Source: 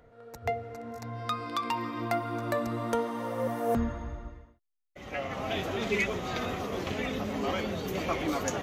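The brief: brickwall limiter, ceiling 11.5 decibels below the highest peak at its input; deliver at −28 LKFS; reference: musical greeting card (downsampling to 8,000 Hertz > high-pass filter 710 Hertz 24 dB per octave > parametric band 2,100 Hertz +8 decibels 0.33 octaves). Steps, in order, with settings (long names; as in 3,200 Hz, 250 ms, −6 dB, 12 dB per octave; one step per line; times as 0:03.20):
brickwall limiter −27 dBFS
downsampling to 8,000 Hz
high-pass filter 710 Hz 24 dB per octave
parametric band 2,100 Hz +8 dB 0.33 octaves
level +10.5 dB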